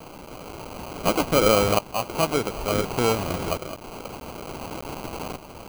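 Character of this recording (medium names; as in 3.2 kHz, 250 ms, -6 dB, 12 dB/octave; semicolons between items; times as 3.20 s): a quantiser's noise floor 6-bit, dither triangular; tremolo saw up 0.56 Hz, depth 75%; aliases and images of a low sample rate 1.8 kHz, jitter 0%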